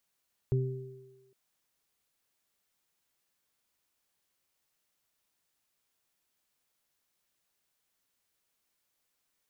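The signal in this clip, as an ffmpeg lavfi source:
-f lavfi -i "aevalsrc='0.0708*pow(10,-3*t/0.96)*sin(2*PI*130*t)+0.01*pow(10,-3*t/0.88)*sin(2*PI*260*t)+0.0282*pow(10,-3*t/1.45)*sin(2*PI*390*t)':d=0.81:s=44100"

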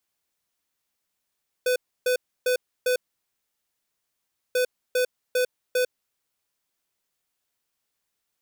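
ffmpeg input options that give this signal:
-f lavfi -i "aevalsrc='0.0794*(2*lt(mod(501*t,1),0.5)-1)*clip(min(mod(mod(t,2.89),0.4),0.1-mod(mod(t,2.89),0.4))/0.005,0,1)*lt(mod(t,2.89),1.6)':d=5.78:s=44100"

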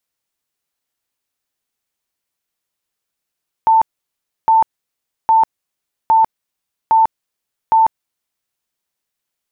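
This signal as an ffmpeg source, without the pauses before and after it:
-f lavfi -i "aevalsrc='0.422*sin(2*PI*892*mod(t,0.81))*lt(mod(t,0.81),130/892)':d=4.86:s=44100"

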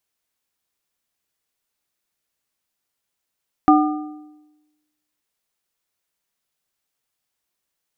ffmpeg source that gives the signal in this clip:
-f lavfi -i "aevalsrc='0.335*pow(10,-3*t/1.09)*sin(2*PI*302*t)+0.266*pow(10,-3*t/0.828)*sin(2*PI*755*t)+0.211*pow(10,-3*t/0.719)*sin(2*PI*1208*t)':d=1.55:s=44100"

